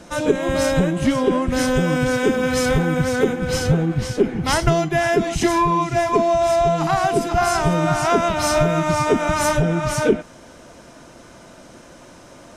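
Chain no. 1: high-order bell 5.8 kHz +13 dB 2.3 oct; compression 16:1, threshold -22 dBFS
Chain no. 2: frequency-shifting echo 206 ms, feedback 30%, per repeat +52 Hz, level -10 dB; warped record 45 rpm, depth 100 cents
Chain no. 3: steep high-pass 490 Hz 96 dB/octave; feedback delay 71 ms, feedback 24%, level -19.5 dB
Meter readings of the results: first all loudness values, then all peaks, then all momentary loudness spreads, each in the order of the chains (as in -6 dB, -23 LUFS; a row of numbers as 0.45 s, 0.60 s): -25.0 LUFS, -18.5 LUFS, -21.5 LUFS; -11.0 dBFS, -2.5 dBFS, -7.0 dBFS; 13 LU, 3 LU, 7 LU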